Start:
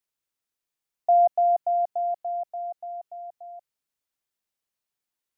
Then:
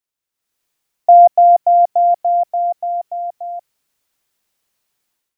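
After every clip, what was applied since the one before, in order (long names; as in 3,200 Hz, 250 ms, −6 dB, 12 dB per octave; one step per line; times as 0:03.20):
automatic gain control gain up to 15 dB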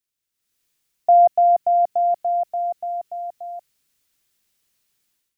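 parametric band 790 Hz −8.5 dB 1.9 octaves
level +2 dB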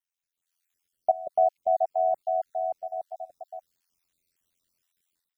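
time-frequency cells dropped at random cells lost 47%
ring modulation 43 Hz
level −2 dB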